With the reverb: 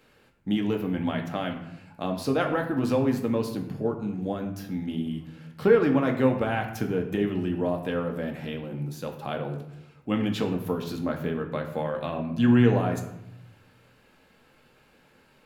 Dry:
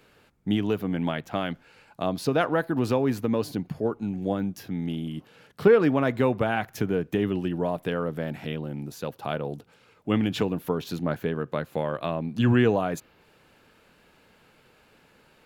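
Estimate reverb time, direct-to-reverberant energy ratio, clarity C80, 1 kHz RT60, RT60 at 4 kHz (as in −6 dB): 0.80 s, 2.5 dB, 11.0 dB, 0.80 s, 0.55 s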